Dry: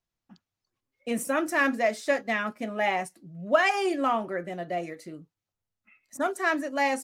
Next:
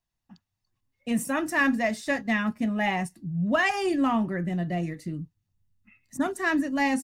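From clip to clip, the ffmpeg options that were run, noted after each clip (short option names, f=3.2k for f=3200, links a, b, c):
-af "asubboost=boost=8:cutoff=220,aecho=1:1:1.1:0.32"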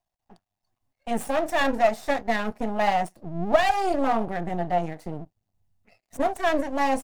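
-af "aeval=exprs='max(val(0),0)':c=same,equalizer=f=710:w=2:g=14.5,volume=1dB"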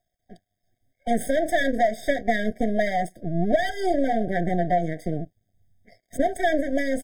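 -af "acompressor=threshold=-24dB:ratio=5,afftfilt=real='re*eq(mod(floor(b*sr/1024/770),2),0)':imag='im*eq(mod(floor(b*sr/1024/770),2),0)':win_size=1024:overlap=0.75,volume=7dB"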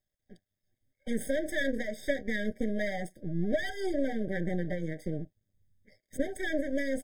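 -af "asuperstop=centerf=690:order=8:qfactor=5.4,volume=-6.5dB"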